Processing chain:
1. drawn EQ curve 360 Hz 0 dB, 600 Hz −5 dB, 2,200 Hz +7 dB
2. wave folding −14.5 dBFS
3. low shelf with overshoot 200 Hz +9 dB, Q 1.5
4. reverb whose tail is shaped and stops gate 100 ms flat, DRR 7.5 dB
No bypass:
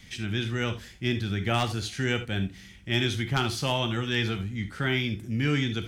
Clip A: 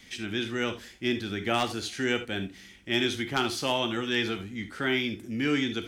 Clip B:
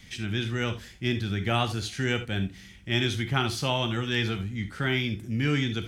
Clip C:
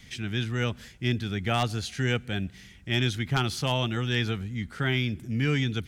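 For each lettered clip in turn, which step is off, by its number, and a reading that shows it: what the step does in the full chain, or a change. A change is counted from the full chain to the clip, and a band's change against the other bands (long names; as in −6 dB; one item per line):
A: 3, 125 Hz band −11.0 dB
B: 2, distortion level −23 dB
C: 4, 125 Hz band +2.0 dB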